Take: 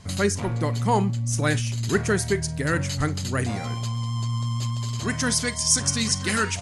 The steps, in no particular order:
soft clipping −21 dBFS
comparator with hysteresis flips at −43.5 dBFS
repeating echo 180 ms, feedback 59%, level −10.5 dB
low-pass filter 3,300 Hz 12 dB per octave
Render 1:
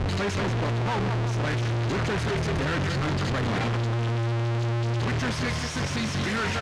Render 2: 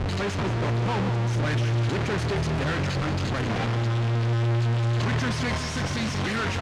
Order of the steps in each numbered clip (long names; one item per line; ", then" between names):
repeating echo, then comparator with hysteresis, then low-pass filter, then soft clipping
comparator with hysteresis, then low-pass filter, then soft clipping, then repeating echo